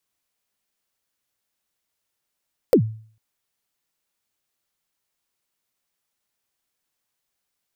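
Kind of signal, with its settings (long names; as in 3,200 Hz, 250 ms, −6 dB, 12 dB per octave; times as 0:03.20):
synth kick length 0.45 s, from 570 Hz, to 110 Hz, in 85 ms, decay 0.48 s, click on, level −7.5 dB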